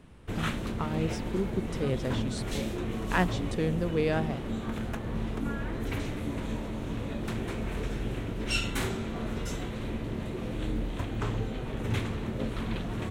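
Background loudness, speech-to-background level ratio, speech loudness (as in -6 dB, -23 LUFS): -34.0 LUFS, 1.0 dB, -33.0 LUFS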